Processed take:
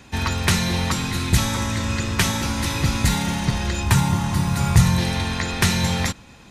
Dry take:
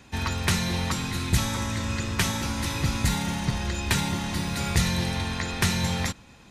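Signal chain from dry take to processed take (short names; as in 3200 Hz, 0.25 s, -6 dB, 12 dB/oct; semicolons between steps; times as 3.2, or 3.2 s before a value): 3.83–4.98 graphic EQ 125/250/500/1000/2000/4000 Hz +9/-3/-4/+5/-4/-5 dB; gain +5 dB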